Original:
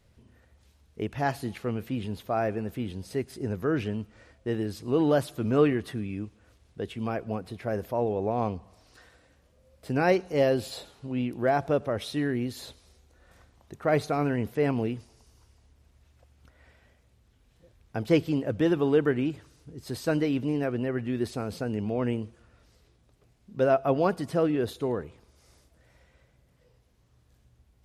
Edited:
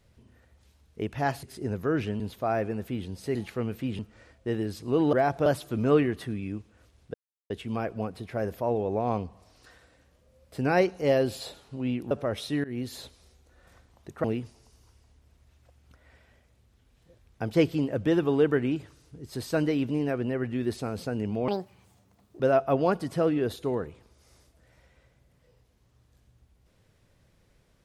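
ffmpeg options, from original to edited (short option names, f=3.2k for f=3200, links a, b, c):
-filter_complex "[0:a]asplit=13[a][b][c][d][e][f][g][h][i][j][k][l][m];[a]atrim=end=1.432[n];[b]atrim=start=3.218:end=3.992[o];[c]atrim=start=2.068:end=3.222[p];[d]atrim=start=1.428:end=2.072[q];[e]atrim=start=3.988:end=5.132[r];[f]atrim=start=11.418:end=11.752[s];[g]atrim=start=5.128:end=6.81,asetpts=PTS-STARTPTS,afade=t=out:st=1.678:d=0.004:c=hsin,apad=pad_dur=0.36[t];[h]atrim=start=6.81:end=11.422,asetpts=PTS-STARTPTS,afade=t=in:d=0.004:c=hsin[u];[i]atrim=start=11.748:end=12.28,asetpts=PTS-STARTPTS,afade=t=out:st=0.528:d=0.004:c=hsin:silence=0.0944061[v];[j]atrim=start=12.28:end=13.882,asetpts=PTS-STARTPTS,afade=t=in:d=0.28:c=qsin:silence=0.0944061[w];[k]atrim=start=14.778:end=22.024[x];[l]atrim=start=22.02:end=23.57,asetpts=PTS-STARTPTS,asetrate=74529,aresample=44100[y];[m]atrim=start=23.566[z];[n][o]acrossfade=d=0.004:c1=hsin:c2=hsin[aa];[aa][p]acrossfade=d=0.004:c1=hsin:c2=hsin[ab];[ab][q]acrossfade=d=0.004:c1=hsin:c2=hsin[ac];[ac][r]acrossfade=d=0.004:c1=hsin:c2=hsin[ad];[ad][s]acrossfade=d=0.004:c1=hsin:c2=hsin[ae];[t][u]concat=n=2:v=0:a=1[af];[ae][af]acrossfade=d=0.004:c1=hsin:c2=hsin[ag];[v][w]concat=n=2:v=0:a=1[ah];[ag][ah]acrossfade=d=0.004:c1=hsin:c2=hsin[ai];[ai][x]acrossfade=d=0.004:c1=hsin:c2=hsin[aj];[aj][y]acrossfade=d=0.004:c1=hsin:c2=hsin[ak];[ak][z]acrossfade=d=0.004:c1=hsin:c2=hsin"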